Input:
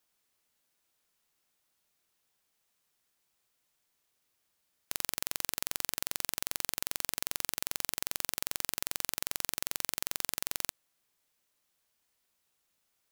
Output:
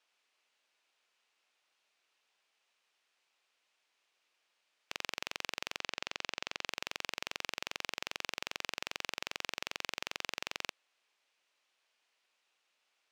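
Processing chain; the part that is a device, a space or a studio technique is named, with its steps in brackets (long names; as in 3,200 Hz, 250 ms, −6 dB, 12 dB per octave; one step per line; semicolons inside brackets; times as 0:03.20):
intercom (band-pass filter 470–4,900 Hz; parametric band 2,600 Hz +5 dB 0.51 octaves; soft clipping −21 dBFS, distortion −12 dB)
0:05.80–0:06.67: low-pass filter 7,700 Hz 12 dB per octave
level +3.5 dB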